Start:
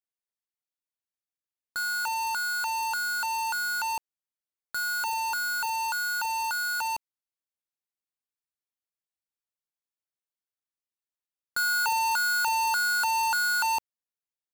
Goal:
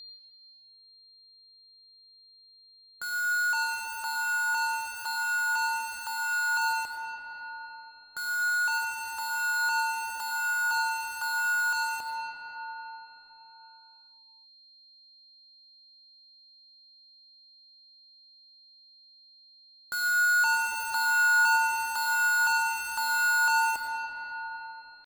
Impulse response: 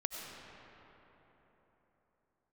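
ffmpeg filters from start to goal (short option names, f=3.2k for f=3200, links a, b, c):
-filter_complex "[0:a]aeval=exprs='val(0)+0.0112*sin(2*PI*4200*n/s)':c=same,atempo=0.58[a];[1:a]atrim=start_sample=2205[b];[a][b]afir=irnorm=-1:irlink=0,volume=-3.5dB"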